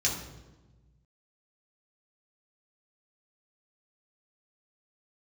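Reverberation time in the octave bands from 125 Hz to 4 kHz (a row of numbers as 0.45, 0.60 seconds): 2.0, 1.6, 1.3, 1.1, 0.85, 0.80 seconds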